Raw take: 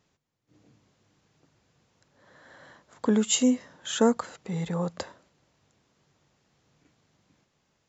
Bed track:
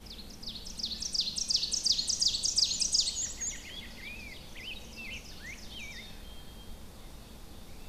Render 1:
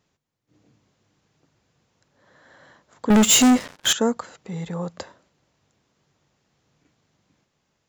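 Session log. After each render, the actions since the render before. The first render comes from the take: 3.10–3.93 s: waveshaping leveller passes 5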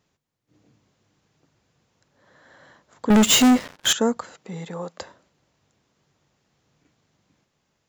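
3.26–3.80 s: median filter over 5 samples; 4.35–5.00 s: high-pass 130 Hz -> 340 Hz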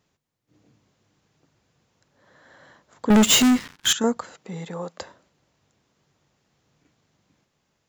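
3.42–4.04 s: peaking EQ 580 Hz -15 dB 0.87 oct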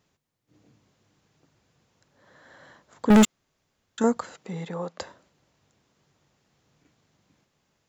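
3.25–3.98 s: room tone; 4.52–5.00 s: distance through air 71 m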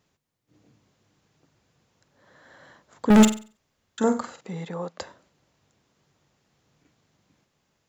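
3.13–4.41 s: flutter echo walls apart 7.9 m, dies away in 0.35 s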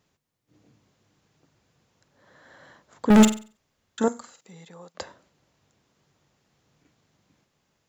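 4.08–4.95 s: pre-emphasis filter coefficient 0.8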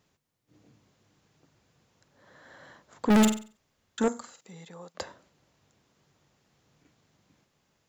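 saturation -17 dBFS, distortion -12 dB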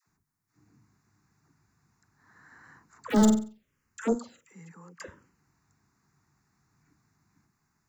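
phase dispersion lows, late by 74 ms, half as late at 610 Hz; touch-sensitive phaser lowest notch 540 Hz, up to 2.5 kHz, full sweep at -22.5 dBFS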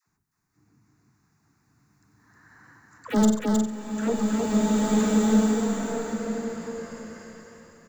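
multi-tap echo 94/313 ms -13.5/-3 dB; swelling reverb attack 1950 ms, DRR -4 dB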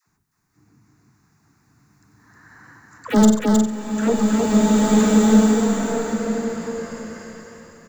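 trim +6.5 dB

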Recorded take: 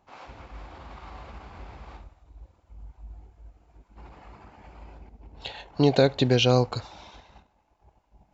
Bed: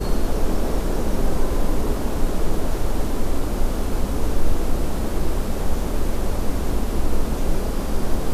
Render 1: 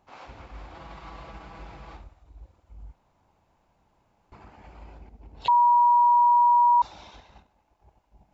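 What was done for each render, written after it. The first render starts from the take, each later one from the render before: 0.74–1.95 s: comb 6.1 ms; 2.93–4.32 s: room tone; 5.48–6.82 s: bleep 961 Hz -15 dBFS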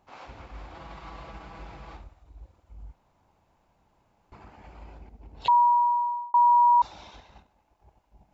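5.55–6.34 s: fade out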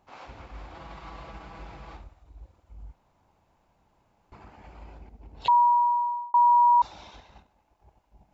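no audible change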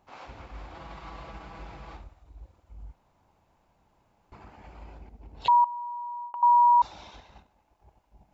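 5.64–6.43 s: compression 12:1, threshold -34 dBFS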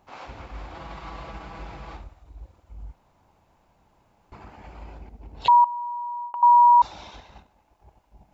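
trim +4.5 dB

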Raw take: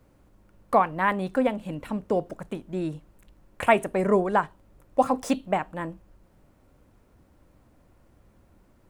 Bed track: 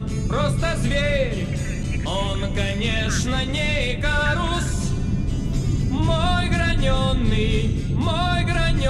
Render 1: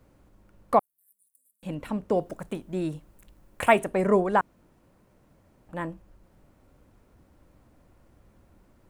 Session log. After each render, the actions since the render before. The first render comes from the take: 0.79–1.63 s: inverse Chebyshev high-pass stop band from 2.8 kHz, stop band 70 dB; 2.18–3.80 s: treble shelf 7.5 kHz +7 dB; 4.41–5.69 s: room tone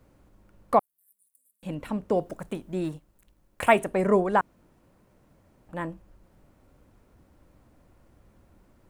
2.84–3.64 s: companding laws mixed up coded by A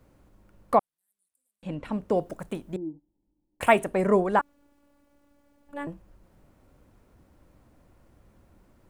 0.76–1.92 s: distance through air 65 m; 2.76–3.61 s: cascade formant filter u; 4.39–5.87 s: robot voice 286 Hz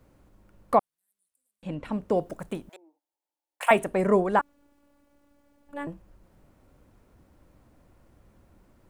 2.69–3.71 s: high-pass 670 Hz 24 dB/octave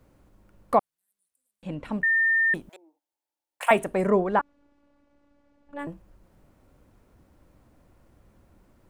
2.03–2.54 s: bleep 1.81 kHz -18.5 dBFS; 4.10–5.79 s: distance through air 110 m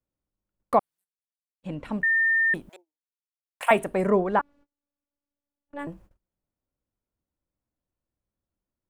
gate -50 dBFS, range -30 dB; dynamic bell 6.4 kHz, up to -4 dB, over -52 dBFS, Q 2.4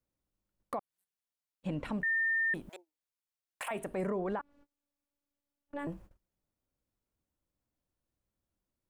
compression 6:1, threshold -27 dBFS, peak gain reduction 13 dB; peak limiter -27 dBFS, peak gain reduction 12 dB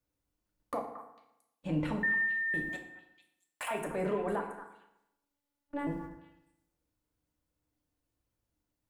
repeats whose band climbs or falls 225 ms, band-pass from 1.3 kHz, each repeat 1.4 oct, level -8.5 dB; FDN reverb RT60 0.84 s, low-frequency decay 1.05×, high-frequency decay 0.65×, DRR 1 dB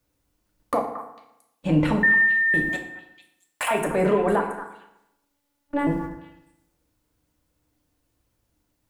trim +12 dB

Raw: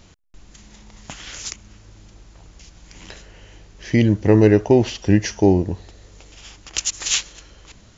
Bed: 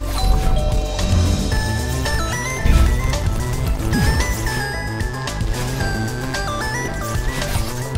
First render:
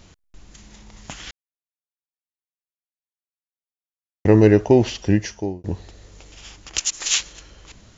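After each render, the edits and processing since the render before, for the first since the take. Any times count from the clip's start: 1.31–4.25 s: mute; 4.97–5.64 s: fade out; 6.79–7.20 s: peaking EQ 66 Hz -15 dB 2.1 oct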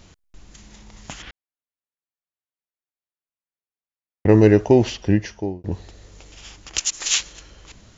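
1.22–4.29 s: low-pass 2.6 kHz; 4.95–5.72 s: distance through air 110 m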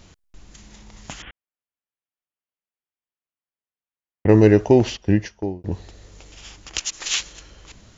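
1.22–4.29 s: elliptic low-pass 3.2 kHz; 4.80–5.56 s: gate -34 dBFS, range -10 dB; 6.77–7.18 s: distance through air 71 m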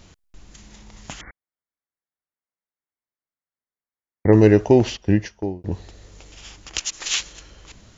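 1.21–4.33 s: brick-wall FIR low-pass 2.3 kHz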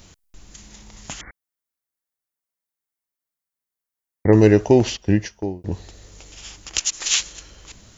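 treble shelf 6.5 kHz +11 dB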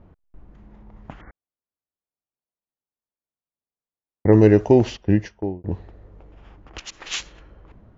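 level-controlled noise filter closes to 1 kHz, open at -14 dBFS; low-pass 1.7 kHz 6 dB/octave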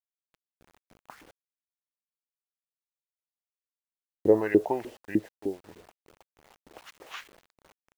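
LFO band-pass saw up 3.3 Hz 310–2500 Hz; bit crusher 9-bit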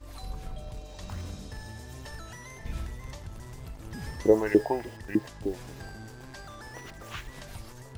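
add bed -22 dB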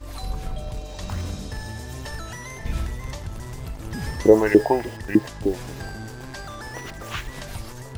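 trim +8.5 dB; peak limiter -2 dBFS, peak gain reduction 2.5 dB

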